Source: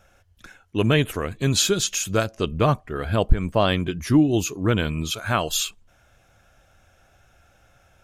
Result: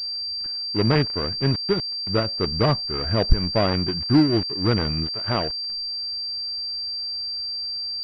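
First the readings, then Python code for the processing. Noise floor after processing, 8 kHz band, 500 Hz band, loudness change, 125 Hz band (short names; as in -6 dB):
-29 dBFS, under -30 dB, -1.0 dB, -0.5 dB, 0.0 dB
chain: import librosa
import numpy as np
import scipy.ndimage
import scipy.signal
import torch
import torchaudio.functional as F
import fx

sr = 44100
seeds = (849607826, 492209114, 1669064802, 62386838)

y = fx.dead_time(x, sr, dead_ms=0.24)
y = fx.pwm(y, sr, carrier_hz=4700.0)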